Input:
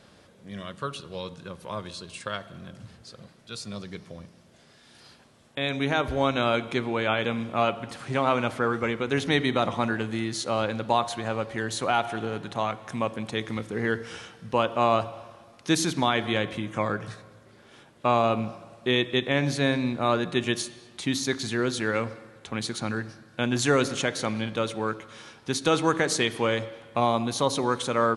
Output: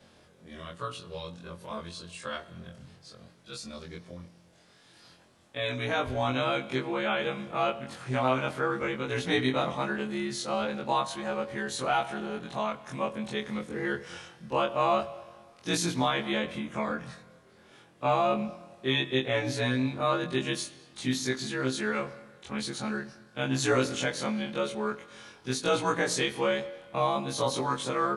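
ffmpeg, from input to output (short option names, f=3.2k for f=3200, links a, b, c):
-af "afftfilt=real='re':imag='-im':win_size=2048:overlap=0.75,volume=1dB"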